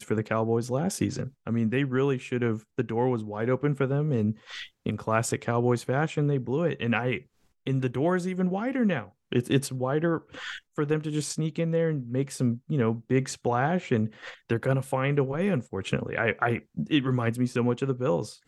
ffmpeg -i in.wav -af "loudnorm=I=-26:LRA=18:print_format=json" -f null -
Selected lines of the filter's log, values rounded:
"input_i" : "-27.8",
"input_tp" : "-8.7",
"input_lra" : "0.8",
"input_thresh" : "-37.9",